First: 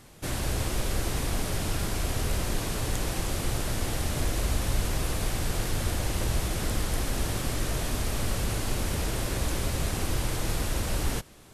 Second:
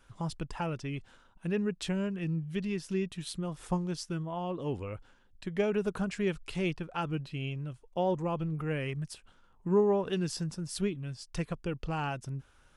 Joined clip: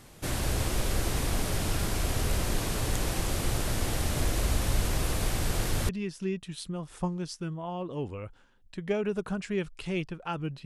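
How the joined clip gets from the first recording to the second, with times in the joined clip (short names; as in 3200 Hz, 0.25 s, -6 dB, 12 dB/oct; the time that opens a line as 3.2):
first
5.89 switch to second from 2.58 s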